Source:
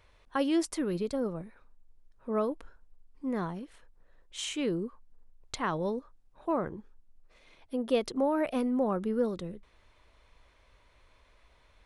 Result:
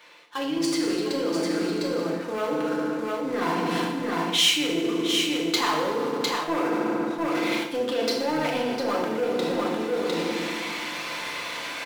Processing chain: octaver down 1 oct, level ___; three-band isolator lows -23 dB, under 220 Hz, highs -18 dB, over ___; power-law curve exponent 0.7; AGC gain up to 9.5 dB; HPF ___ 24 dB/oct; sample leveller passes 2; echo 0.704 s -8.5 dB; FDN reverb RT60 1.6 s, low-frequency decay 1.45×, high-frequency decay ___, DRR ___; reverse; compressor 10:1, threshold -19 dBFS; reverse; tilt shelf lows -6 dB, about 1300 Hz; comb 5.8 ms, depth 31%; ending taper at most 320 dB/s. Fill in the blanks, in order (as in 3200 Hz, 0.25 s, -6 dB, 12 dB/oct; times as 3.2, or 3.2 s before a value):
-2 dB, 5100 Hz, 150 Hz, 0.75×, -3 dB